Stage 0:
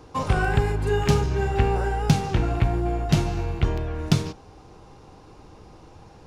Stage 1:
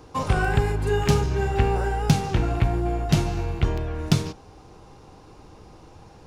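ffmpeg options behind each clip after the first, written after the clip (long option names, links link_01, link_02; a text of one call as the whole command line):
ffmpeg -i in.wav -af "highshelf=frequency=8300:gain=4" out.wav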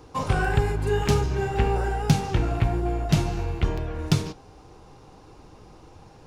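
ffmpeg -i in.wav -af "flanger=delay=2.2:depth=5.5:regen=-66:speed=1.7:shape=sinusoidal,volume=3dB" out.wav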